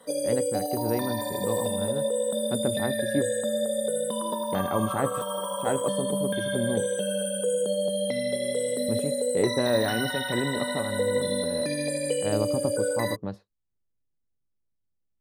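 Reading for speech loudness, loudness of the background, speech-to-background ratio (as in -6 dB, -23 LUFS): -31.5 LUFS, -28.0 LUFS, -3.5 dB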